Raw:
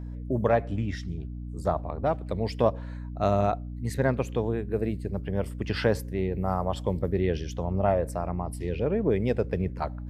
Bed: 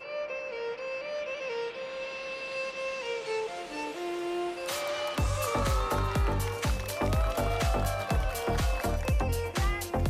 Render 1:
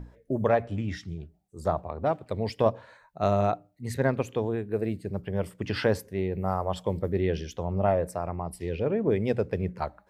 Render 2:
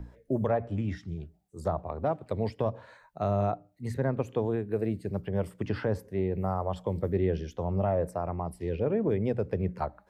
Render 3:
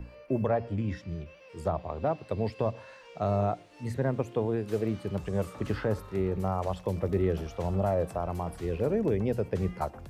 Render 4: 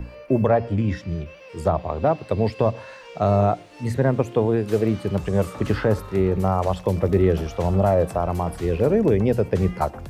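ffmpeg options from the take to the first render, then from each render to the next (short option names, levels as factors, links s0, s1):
-af "bandreject=f=60:t=h:w=6,bandreject=f=120:t=h:w=6,bandreject=f=180:t=h:w=6,bandreject=f=240:t=h:w=6,bandreject=f=300:t=h:w=6"
-filter_complex "[0:a]acrossover=split=150|1500[s0][s1][s2];[s1]alimiter=limit=0.112:level=0:latency=1:release=140[s3];[s2]acompressor=threshold=0.00251:ratio=5[s4];[s0][s3][s4]amix=inputs=3:normalize=0"
-filter_complex "[1:a]volume=0.133[s0];[0:a][s0]amix=inputs=2:normalize=0"
-af "volume=2.82"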